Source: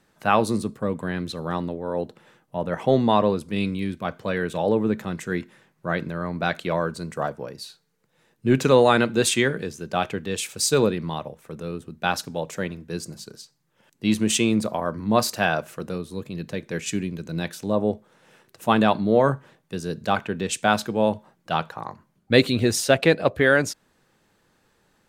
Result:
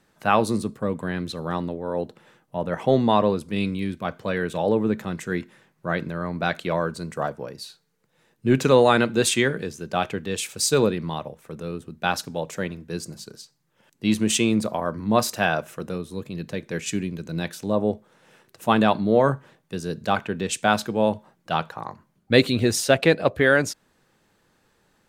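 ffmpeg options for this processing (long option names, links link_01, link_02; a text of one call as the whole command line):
ffmpeg -i in.wav -filter_complex "[0:a]asettb=1/sr,asplit=3[link_01][link_02][link_03];[link_01]atrim=end=15.124[link_04];[link_02]atrim=start=15.12:end=16.18,asetpts=PTS-STARTPTS,afade=type=in:duration=0.004:curve=qsin,afade=type=out:start_time=1.056:duration=0.004:curve=qsin,bandreject=frequency=4500:width=12[link_05];[link_03]atrim=start=16.176[link_06];[link_04][link_05]acrossfade=duration=0.004:curve1=hsin:curve2=qsin[link_07];[link_07][link_06]acrossfade=duration=0.004:curve1=qsin:curve2=hsin" out.wav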